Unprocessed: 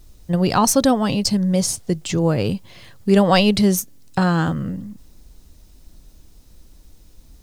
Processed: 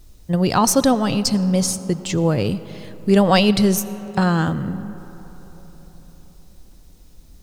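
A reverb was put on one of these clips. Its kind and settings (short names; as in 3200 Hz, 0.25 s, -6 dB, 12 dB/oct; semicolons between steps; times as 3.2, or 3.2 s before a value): digital reverb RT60 4.6 s, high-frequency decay 0.4×, pre-delay 45 ms, DRR 15.5 dB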